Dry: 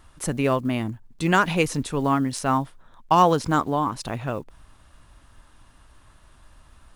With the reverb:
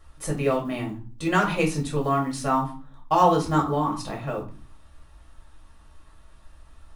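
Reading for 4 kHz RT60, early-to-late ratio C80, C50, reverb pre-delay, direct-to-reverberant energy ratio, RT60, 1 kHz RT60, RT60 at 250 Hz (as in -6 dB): 0.30 s, 15.5 dB, 10.0 dB, 4 ms, -2.0 dB, 0.40 s, 0.40 s, 0.60 s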